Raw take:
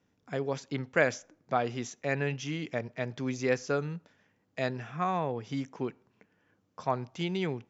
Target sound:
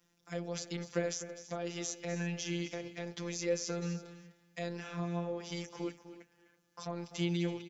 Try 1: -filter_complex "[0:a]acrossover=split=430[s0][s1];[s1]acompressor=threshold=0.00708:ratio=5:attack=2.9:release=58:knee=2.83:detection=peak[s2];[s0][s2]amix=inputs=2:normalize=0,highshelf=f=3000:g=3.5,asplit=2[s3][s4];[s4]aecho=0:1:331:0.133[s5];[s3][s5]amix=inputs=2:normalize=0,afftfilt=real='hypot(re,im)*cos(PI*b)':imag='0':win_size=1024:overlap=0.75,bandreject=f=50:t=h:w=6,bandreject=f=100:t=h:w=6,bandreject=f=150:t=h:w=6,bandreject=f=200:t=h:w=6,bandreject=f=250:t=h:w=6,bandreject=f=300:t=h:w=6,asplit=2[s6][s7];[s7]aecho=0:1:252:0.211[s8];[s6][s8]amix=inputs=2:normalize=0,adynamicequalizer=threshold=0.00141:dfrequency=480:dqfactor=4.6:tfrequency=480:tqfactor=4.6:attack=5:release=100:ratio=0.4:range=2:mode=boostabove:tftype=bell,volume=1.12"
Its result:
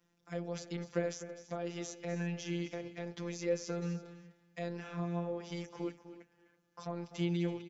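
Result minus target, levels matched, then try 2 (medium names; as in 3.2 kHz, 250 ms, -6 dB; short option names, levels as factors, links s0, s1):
8 kHz band -6.5 dB
-filter_complex "[0:a]acrossover=split=430[s0][s1];[s1]acompressor=threshold=0.00708:ratio=5:attack=2.9:release=58:knee=2.83:detection=peak[s2];[s0][s2]amix=inputs=2:normalize=0,highshelf=f=3000:g=12.5,asplit=2[s3][s4];[s4]aecho=0:1:331:0.133[s5];[s3][s5]amix=inputs=2:normalize=0,afftfilt=real='hypot(re,im)*cos(PI*b)':imag='0':win_size=1024:overlap=0.75,bandreject=f=50:t=h:w=6,bandreject=f=100:t=h:w=6,bandreject=f=150:t=h:w=6,bandreject=f=200:t=h:w=6,bandreject=f=250:t=h:w=6,bandreject=f=300:t=h:w=6,asplit=2[s6][s7];[s7]aecho=0:1:252:0.211[s8];[s6][s8]amix=inputs=2:normalize=0,adynamicequalizer=threshold=0.00141:dfrequency=480:dqfactor=4.6:tfrequency=480:tqfactor=4.6:attack=5:release=100:ratio=0.4:range=2:mode=boostabove:tftype=bell,volume=1.12"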